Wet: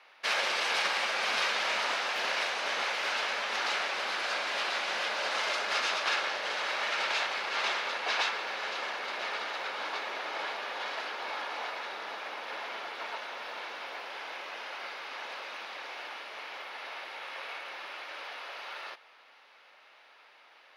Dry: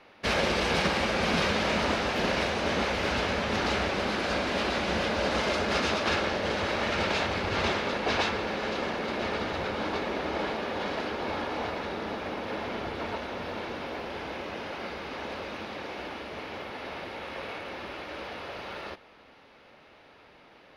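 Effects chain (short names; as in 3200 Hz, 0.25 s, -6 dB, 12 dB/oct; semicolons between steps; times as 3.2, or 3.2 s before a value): HPF 910 Hz 12 dB/oct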